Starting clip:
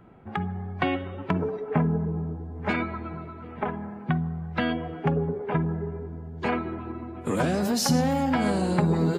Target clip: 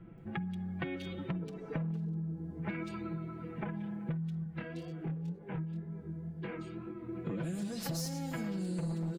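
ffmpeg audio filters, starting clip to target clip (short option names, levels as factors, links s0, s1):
-filter_complex "[0:a]equalizer=f=920:w=0.66:g=-15,aeval=exprs='0.0891*(abs(mod(val(0)/0.0891+3,4)-2)-1)':c=same,aecho=1:1:6:0.84,acrossover=split=3300[s0][s1];[s1]adelay=180[s2];[s0][s2]amix=inputs=2:normalize=0,acompressor=threshold=0.0158:ratio=6,asettb=1/sr,asplit=3[s3][s4][s5];[s3]atrim=end=4.444[s6];[s4]atrim=start=4.44:end=7.09,asetpts=PTS-STARTPTS,afade=t=in:d=0.004:c=qsin,afade=t=out:st=2.646:d=0.004:c=qsin,flanger=delay=19.5:depth=7:speed=2[s7];[s5]atrim=start=7.086[s8];[s6][s7]acrossfade=d=0.004:c1=hsin:c2=qsin[s9];[s9][s8]acrossfade=d=0.004:c1=qsin:c2=hsin,volume=1.12"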